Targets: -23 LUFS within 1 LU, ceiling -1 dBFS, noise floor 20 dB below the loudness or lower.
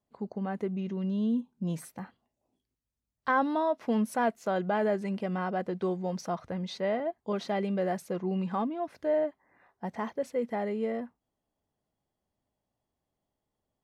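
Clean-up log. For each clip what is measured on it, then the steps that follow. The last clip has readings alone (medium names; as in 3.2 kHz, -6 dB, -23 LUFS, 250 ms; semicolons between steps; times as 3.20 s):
loudness -31.5 LUFS; peak level -16.5 dBFS; loudness target -23.0 LUFS
-> trim +8.5 dB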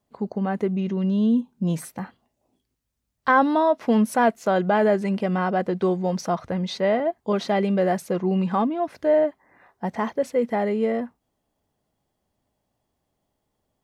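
loudness -23.0 LUFS; peak level -8.0 dBFS; noise floor -78 dBFS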